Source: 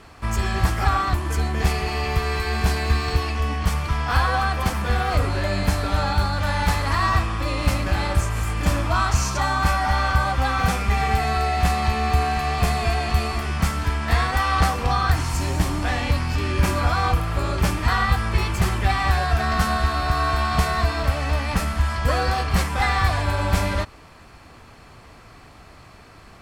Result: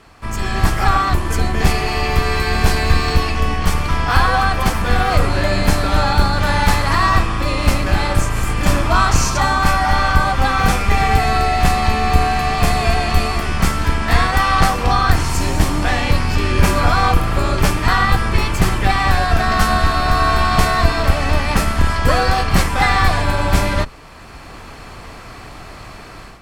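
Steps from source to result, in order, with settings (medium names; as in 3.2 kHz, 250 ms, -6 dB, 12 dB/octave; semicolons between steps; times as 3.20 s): octave divider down 2 oct, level +2 dB; bass shelf 220 Hz -4.5 dB; level rider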